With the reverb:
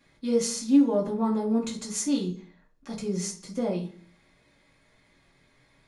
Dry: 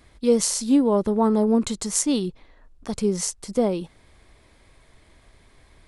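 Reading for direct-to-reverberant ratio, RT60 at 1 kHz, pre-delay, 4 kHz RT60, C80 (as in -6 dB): -4.0 dB, 0.40 s, 3 ms, 0.45 s, 15.5 dB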